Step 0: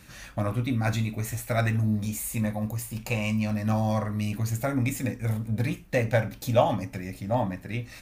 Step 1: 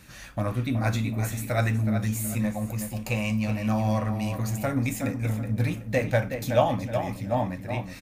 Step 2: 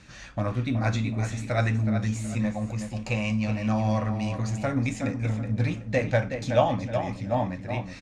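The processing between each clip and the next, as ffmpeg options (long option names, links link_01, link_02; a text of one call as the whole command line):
ffmpeg -i in.wav -filter_complex "[0:a]asplit=2[link_01][link_02];[link_02]adelay=372,lowpass=frequency=3300:poles=1,volume=-7.5dB,asplit=2[link_03][link_04];[link_04]adelay=372,lowpass=frequency=3300:poles=1,volume=0.35,asplit=2[link_05][link_06];[link_06]adelay=372,lowpass=frequency=3300:poles=1,volume=0.35,asplit=2[link_07][link_08];[link_08]adelay=372,lowpass=frequency=3300:poles=1,volume=0.35[link_09];[link_01][link_03][link_05][link_07][link_09]amix=inputs=5:normalize=0" out.wav
ffmpeg -i in.wav -af "lowpass=frequency=7000:width=0.5412,lowpass=frequency=7000:width=1.3066" out.wav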